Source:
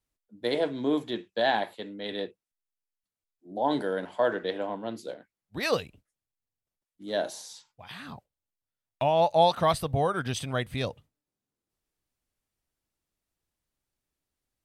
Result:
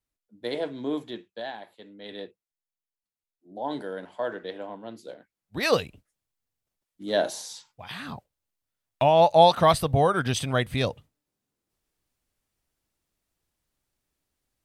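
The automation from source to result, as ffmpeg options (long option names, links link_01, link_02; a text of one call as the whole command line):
ffmpeg -i in.wav -af "volume=16.5dB,afade=type=out:start_time=1.02:duration=0.55:silence=0.266073,afade=type=in:start_time=1.57:duration=0.59:silence=0.334965,afade=type=in:start_time=5.02:duration=0.79:silence=0.316228" out.wav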